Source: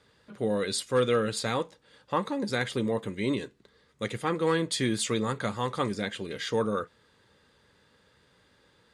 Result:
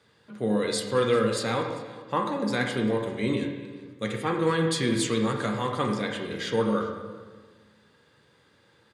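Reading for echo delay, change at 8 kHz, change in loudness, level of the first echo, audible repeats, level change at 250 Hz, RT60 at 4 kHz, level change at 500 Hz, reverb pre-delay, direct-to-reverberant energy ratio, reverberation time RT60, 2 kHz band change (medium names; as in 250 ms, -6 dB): 395 ms, 0.0 dB, +2.5 dB, -21.0 dB, 1, +3.5 dB, 1.2 s, +2.5 dB, 6 ms, 2.0 dB, 1.5 s, +2.5 dB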